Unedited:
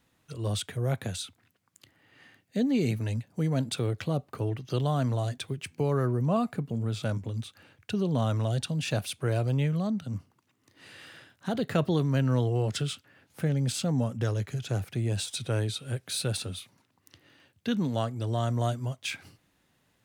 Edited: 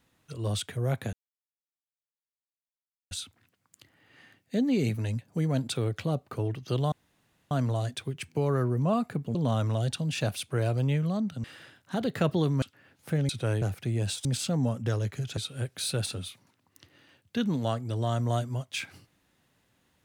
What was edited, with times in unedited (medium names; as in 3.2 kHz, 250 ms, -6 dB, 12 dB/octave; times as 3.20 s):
1.13 s: insert silence 1.98 s
4.94 s: insert room tone 0.59 s
6.78–8.05 s: delete
10.14–10.98 s: delete
12.16–12.93 s: delete
13.60–14.72 s: swap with 15.35–15.68 s